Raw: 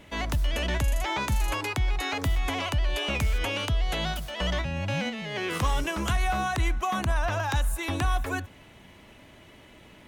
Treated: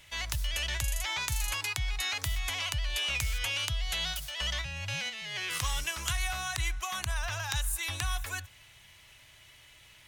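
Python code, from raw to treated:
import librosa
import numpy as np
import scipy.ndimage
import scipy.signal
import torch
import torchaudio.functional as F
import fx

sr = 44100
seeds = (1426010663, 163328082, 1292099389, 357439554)

y = fx.curve_eq(x, sr, hz=(130.0, 220.0, 1900.0, 5300.0), db=(0, -17, 5, 12))
y = y * 10.0 ** (-7.5 / 20.0)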